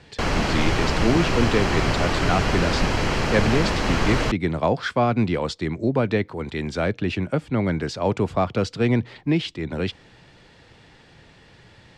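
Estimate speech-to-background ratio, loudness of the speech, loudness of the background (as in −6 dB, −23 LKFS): −1.0 dB, −24.5 LKFS, −23.5 LKFS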